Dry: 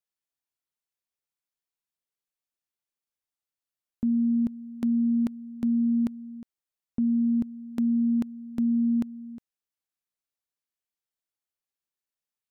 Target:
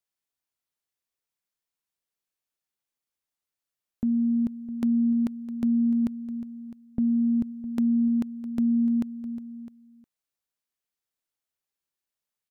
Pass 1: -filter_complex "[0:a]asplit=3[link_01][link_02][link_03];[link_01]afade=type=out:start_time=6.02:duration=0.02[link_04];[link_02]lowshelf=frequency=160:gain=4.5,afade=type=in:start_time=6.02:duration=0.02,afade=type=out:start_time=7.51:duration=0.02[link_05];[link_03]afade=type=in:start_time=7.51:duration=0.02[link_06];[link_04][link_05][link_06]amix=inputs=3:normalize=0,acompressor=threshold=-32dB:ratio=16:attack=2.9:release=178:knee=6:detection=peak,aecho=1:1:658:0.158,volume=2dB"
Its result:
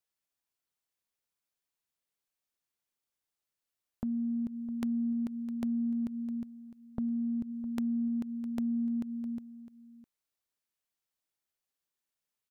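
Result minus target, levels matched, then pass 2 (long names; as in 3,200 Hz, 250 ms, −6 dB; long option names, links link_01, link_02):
downward compressor: peak gain reduction +9.5 dB
-filter_complex "[0:a]asplit=3[link_01][link_02][link_03];[link_01]afade=type=out:start_time=6.02:duration=0.02[link_04];[link_02]lowshelf=frequency=160:gain=4.5,afade=type=in:start_time=6.02:duration=0.02,afade=type=out:start_time=7.51:duration=0.02[link_05];[link_03]afade=type=in:start_time=7.51:duration=0.02[link_06];[link_04][link_05][link_06]amix=inputs=3:normalize=0,acompressor=threshold=-21dB:ratio=16:attack=2.9:release=178:knee=6:detection=peak,aecho=1:1:658:0.158,volume=2dB"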